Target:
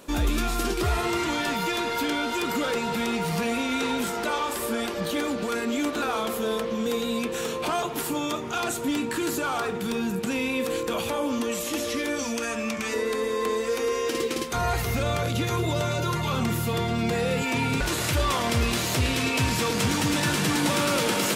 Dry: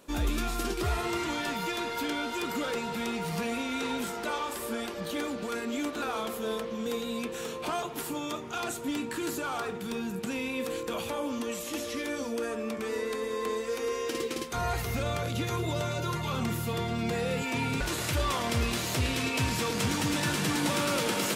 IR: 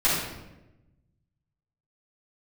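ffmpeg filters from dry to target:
-filter_complex "[0:a]asettb=1/sr,asplit=3[link_01][link_02][link_03];[link_01]atrim=end=12.194[link_04];[link_02]atrim=start=12.19:end=12.94,asetpts=PTS-STARTPTS,afade=type=in:duration=0.004:curve=qsin,afade=type=out:start_time=0.746:duration=0.004:curve=qsin,equalizer=frequency=400:width_type=o:width=0.67:gain=-11,equalizer=frequency=2500:width_type=o:width=0.67:gain=6,equalizer=frequency=6300:width_type=o:width=0.67:gain=8[link_05];[link_03]atrim=start=12.936[link_06];[link_04][link_05]acrossfade=duration=0.004:curve1=hsin:curve2=qsin[link_07];[link_07][link_06]acrossfade=duration=0.004:curve1=qsin:curve2=hsin,asplit=2[link_08][link_09];[link_09]alimiter=level_in=5dB:limit=-24dB:level=0:latency=1:release=129,volume=-5dB,volume=1dB[link_10];[link_08][link_10]amix=inputs=2:normalize=0,volume=1.5dB"

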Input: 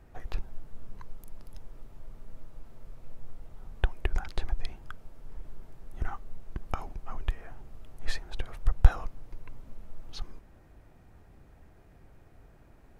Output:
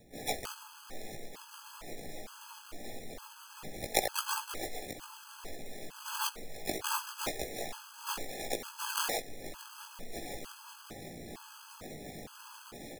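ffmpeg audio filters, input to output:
ffmpeg -i in.wav -filter_complex "[0:a]asplit=2[link_01][link_02];[link_02]acompressor=threshold=-38dB:ratio=5,volume=-2dB[link_03];[link_01][link_03]amix=inputs=2:normalize=0,acrossover=split=160 3200:gain=0.0891 1 0.126[link_04][link_05][link_06];[link_04][link_05][link_06]amix=inputs=3:normalize=0,acrossover=split=1500[link_07][link_08];[link_07]adelay=130[link_09];[link_09][link_08]amix=inputs=2:normalize=0,acrossover=split=280|960[link_10][link_11][link_12];[link_10]asoftclip=type=tanh:threshold=-30dB[link_13];[link_13][link_11][link_12]amix=inputs=3:normalize=0,acrusher=samples=40:mix=1:aa=0.000001:lfo=1:lforange=24:lforate=2.7,flanger=delay=17:depth=2.6:speed=0.7,acrossover=split=350|3000[link_14][link_15][link_16];[link_14]acompressor=threshold=-59dB:ratio=6[link_17];[link_17][link_15][link_16]amix=inputs=3:normalize=0,asplit=4[link_18][link_19][link_20][link_21];[link_19]asetrate=52444,aresample=44100,atempo=0.840896,volume=-7dB[link_22];[link_20]asetrate=66075,aresample=44100,atempo=0.66742,volume=-6dB[link_23];[link_21]asetrate=88200,aresample=44100,atempo=0.5,volume=-9dB[link_24];[link_18][link_22][link_23][link_24]amix=inputs=4:normalize=0,highshelf=frequency=3700:gain=10,afftfilt=real='re*gt(sin(2*PI*1.1*pts/sr)*(1-2*mod(floor(b*sr/1024/840),2)),0)':imag='im*gt(sin(2*PI*1.1*pts/sr)*(1-2*mod(floor(b*sr/1024/840),2)),0)':win_size=1024:overlap=0.75,volume=13.5dB" out.wav

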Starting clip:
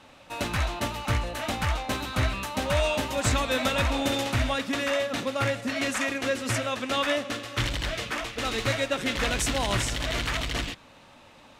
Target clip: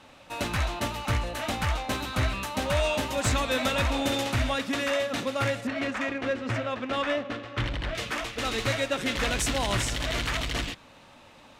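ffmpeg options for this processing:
ffmpeg -i in.wav -filter_complex "[0:a]asoftclip=type=tanh:threshold=-14.5dB,asettb=1/sr,asplit=3[link_01][link_02][link_03];[link_01]atrim=end=5.674[link_04];[link_02]atrim=start=5.67:end=7.95,asetpts=PTS-STARTPTS,afade=type=in:duration=0.004:curve=qsin,afade=type=out:start_time=2.276:duration=0.004:curve=qsin,adynamicsmooth=sensitivity=1:basefreq=2400[link_05];[link_03]atrim=start=7.946[link_06];[link_04][link_05]acrossfade=duration=0.004:curve1=hsin:curve2=qsin[link_07];[link_07][link_06]acrossfade=duration=0.004:curve1=qsin:curve2=hsin" out.wav

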